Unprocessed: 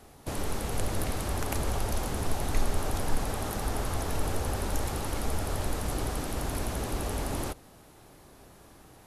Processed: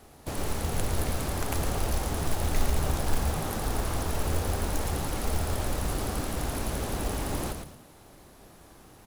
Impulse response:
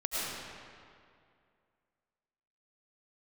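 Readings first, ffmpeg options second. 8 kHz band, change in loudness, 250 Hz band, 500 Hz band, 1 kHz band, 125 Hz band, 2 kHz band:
+1.5 dB, +2.0 dB, +1.5 dB, +1.0 dB, +1.0 dB, +2.5 dB, +1.5 dB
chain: -filter_complex "[0:a]asplit=5[a][b][c][d][e];[b]adelay=111,afreqshift=-85,volume=-6dB[f];[c]adelay=222,afreqshift=-170,volume=-16.2dB[g];[d]adelay=333,afreqshift=-255,volume=-26.3dB[h];[e]adelay=444,afreqshift=-340,volume=-36.5dB[i];[a][f][g][h][i]amix=inputs=5:normalize=0,acrusher=bits=4:mode=log:mix=0:aa=0.000001"

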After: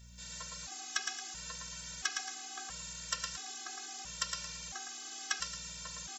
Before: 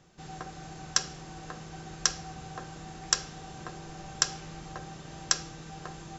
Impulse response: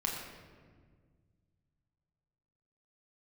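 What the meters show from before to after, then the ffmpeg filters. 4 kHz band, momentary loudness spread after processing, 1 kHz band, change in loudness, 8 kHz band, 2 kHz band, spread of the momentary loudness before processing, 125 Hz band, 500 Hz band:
-5.5 dB, 6 LU, -6.0 dB, -6.0 dB, n/a, -1.5 dB, 15 LU, -13.0 dB, -12.5 dB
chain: -filter_complex "[0:a]acrossover=split=3000[a][b];[b]acompressor=threshold=-47dB:ratio=4:attack=1:release=60[c];[a][c]amix=inputs=2:normalize=0,aderivative,acontrast=34,aeval=exprs='val(0)+0.000891*(sin(2*PI*60*n/s)+sin(2*PI*2*60*n/s)/2+sin(2*PI*3*60*n/s)/3+sin(2*PI*4*60*n/s)/4+sin(2*PI*5*60*n/s)/5)':c=same,asplit=2[d][e];[e]asoftclip=type=tanh:threshold=-29.5dB,volume=-11.5dB[f];[d][f]amix=inputs=2:normalize=0,aecho=1:1:112|224|336|448:0.596|0.203|0.0689|0.0234,afftfilt=real='re*gt(sin(2*PI*0.74*pts/sr)*(1-2*mod(floor(b*sr/1024/220),2)),0)':imag='im*gt(sin(2*PI*0.74*pts/sr)*(1-2*mod(floor(b*sr/1024/220),2)),0)':win_size=1024:overlap=0.75,volume=6dB"

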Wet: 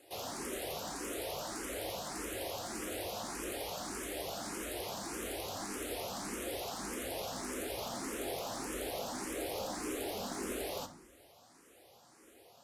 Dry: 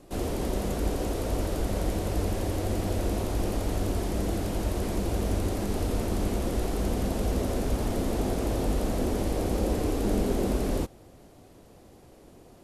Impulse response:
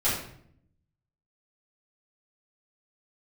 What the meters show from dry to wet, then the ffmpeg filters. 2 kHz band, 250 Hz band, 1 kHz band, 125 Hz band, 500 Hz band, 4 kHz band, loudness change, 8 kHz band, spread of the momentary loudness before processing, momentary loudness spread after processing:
-2.5 dB, -14.0 dB, -5.5 dB, -23.0 dB, -9.5 dB, -1.0 dB, -10.0 dB, -1.0 dB, 3 LU, 2 LU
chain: -filter_complex "[0:a]highpass=f=1.3k:p=1,asoftclip=type=tanh:threshold=-32dB,asplit=2[a][b];[1:a]atrim=start_sample=2205[c];[b][c]afir=irnorm=-1:irlink=0,volume=-17.5dB[d];[a][d]amix=inputs=2:normalize=0,asplit=2[e][f];[f]afreqshift=1.7[g];[e][g]amix=inputs=2:normalize=1,volume=2dB"

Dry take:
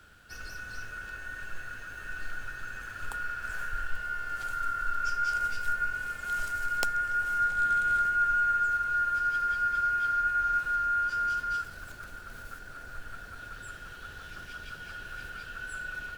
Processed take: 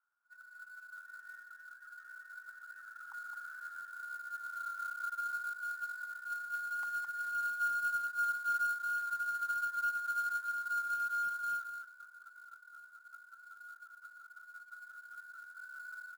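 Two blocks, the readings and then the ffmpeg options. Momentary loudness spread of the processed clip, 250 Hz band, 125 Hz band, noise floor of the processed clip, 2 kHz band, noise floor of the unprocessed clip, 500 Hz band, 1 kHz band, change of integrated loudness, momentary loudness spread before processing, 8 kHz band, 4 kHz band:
19 LU, n/a, under -25 dB, -59 dBFS, -8.0 dB, -46 dBFS, under -20 dB, -8.0 dB, -7.0 dB, 18 LU, -6.5 dB, -11.5 dB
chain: -filter_complex "[0:a]afftdn=nr=20:nf=-38,acrossover=split=1100[a][b];[a]acompressor=threshold=-45dB:ratio=16[c];[b]aeval=exprs='0.141*(cos(1*acos(clip(val(0)/0.141,-1,1)))-cos(1*PI/2))+0.00141*(cos(5*acos(clip(val(0)/0.141,-1,1)))-cos(5*PI/2))':c=same[d];[c][d]amix=inputs=2:normalize=0,asuperpass=centerf=1100:order=4:qfactor=2,aecho=1:1:213:0.562,acrusher=bits=4:mode=log:mix=0:aa=0.000001,volume=-4.5dB"

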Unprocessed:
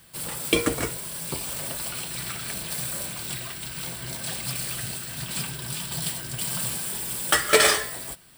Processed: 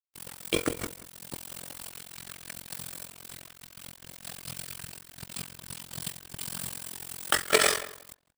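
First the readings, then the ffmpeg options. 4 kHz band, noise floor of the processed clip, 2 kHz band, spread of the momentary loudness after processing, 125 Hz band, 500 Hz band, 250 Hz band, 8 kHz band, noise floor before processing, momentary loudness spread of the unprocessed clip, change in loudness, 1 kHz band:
-6.0 dB, -55 dBFS, -5.5 dB, 19 LU, -10.5 dB, -5.5 dB, -6.5 dB, -7.5 dB, -37 dBFS, 12 LU, -6.0 dB, -5.0 dB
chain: -filter_complex "[0:a]tremolo=f=44:d=0.788,aeval=exprs='sgn(val(0))*max(abs(val(0))-0.0188,0)':c=same,asplit=2[a][b];[b]adelay=181,lowpass=f=2.3k:p=1,volume=-16dB,asplit=2[c][d];[d]adelay=181,lowpass=f=2.3k:p=1,volume=0.18[e];[c][e]amix=inputs=2:normalize=0[f];[a][f]amix=inputs=2:normalize=0"

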